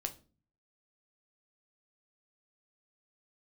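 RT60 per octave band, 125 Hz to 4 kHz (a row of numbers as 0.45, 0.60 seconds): 0.75, 0.65, 0.40, 0.30, 0.30, 0.30 seconds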